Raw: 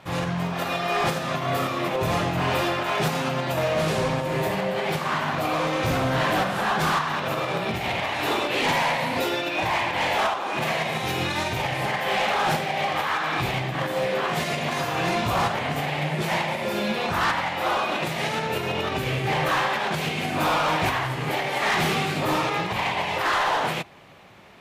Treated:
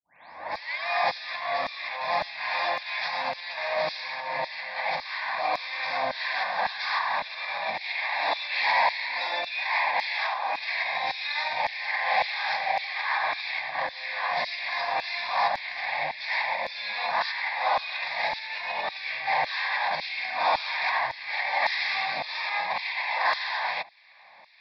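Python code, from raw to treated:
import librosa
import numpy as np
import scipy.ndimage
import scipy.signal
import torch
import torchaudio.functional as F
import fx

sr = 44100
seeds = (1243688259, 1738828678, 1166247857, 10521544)

y = fx.tape_start_head(x, sr, length_s=0.87)
y = scipy.signal.sosfilt(scipy.signal.butter(16, 5200.0, 'lowpass', fs=sr, output='sos'), y)
y = fx.filter_lfo_highpass(y, sr, shape='saw_down', hz=1.8, low_hz=500.0, high_hz=3700.0, q=0.89)
y = fx.fixed_phaser(y, sr, hz=2000.0, stages=8)
y = y * librosa.db_to_amplitude(2.5)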